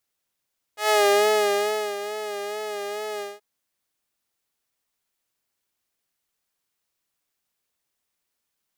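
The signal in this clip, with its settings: synth patch with vibrato G#4, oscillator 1 saw, oscillator 2 triangle, interval +7 st, oscillator 2 level -7 dB, sub -29.5 dB, filter highpass, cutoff 130 Hz, Q 0.85, filter envelope 3 oct, filter decay 0.46 s, filter sustain 20%, attack 122 ms, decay 1.07 s, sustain -14.5 dB, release 0.20 s, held 2.43 s, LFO 2.3 Hz, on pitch 48 cents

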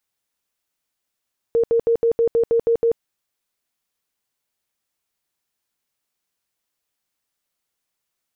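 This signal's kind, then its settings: tone bursts 463 Hz, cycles 40, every 0.16 s, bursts 9, -13.5 dBFS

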